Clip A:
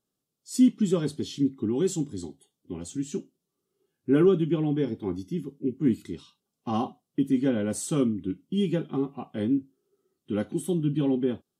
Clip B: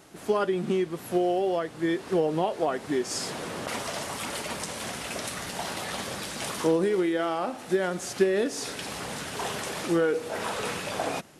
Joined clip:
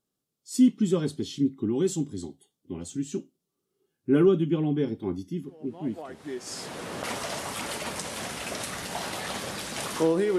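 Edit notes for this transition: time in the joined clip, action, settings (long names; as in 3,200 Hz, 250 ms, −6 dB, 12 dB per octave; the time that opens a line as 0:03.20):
clip A
0:06.11: continue with clip B from 0:02.75, crossfade 1.86 s quadratic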